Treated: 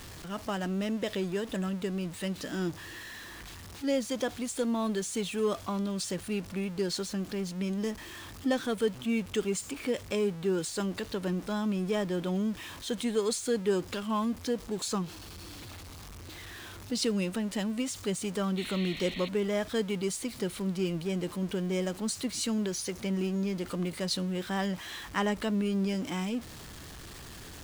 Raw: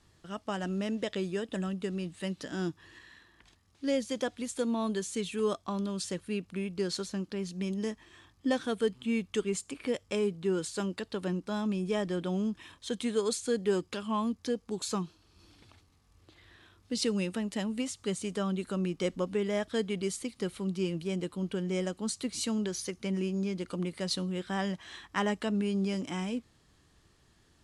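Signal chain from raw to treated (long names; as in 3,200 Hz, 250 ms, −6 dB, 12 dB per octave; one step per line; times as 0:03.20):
converter with a step at zero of −40.5 dBFS
sound drawn into the spectrogram noise, 0:18.57–0:19.29, 1,800–4,400 Hz −42 dBFS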